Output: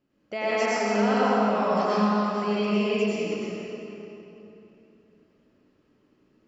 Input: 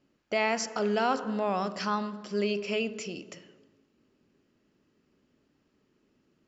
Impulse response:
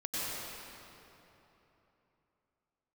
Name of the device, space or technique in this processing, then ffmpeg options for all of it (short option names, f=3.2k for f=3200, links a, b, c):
swimming-pool hall: -filter_complex "[1:a]atrim=start_sample=2205[a];[0:a][a]afir=irnorm=-1:irlink=0,highshelf=f=4.2k:g=-7,asettb=1/sr,asplit=3[b][c][d];[b]atrim=end=2.744[e];[c]atrim=start=2.74:end=3.32,asetpts=PTS-STARTPTS,afade=t=in:d=0.004:c=qsin,afade=t=out:st=0.576:d=0.004:c=qsin,bandreject=f=1.4k:w=7.1[f];[d]atrim=start=3.316[g];[e][f]acrossfade=d=0.004:c1=hsin:c2=qsin[h];[h][g]acrossfade=d=0.004:c1=qsin:c2=hsin"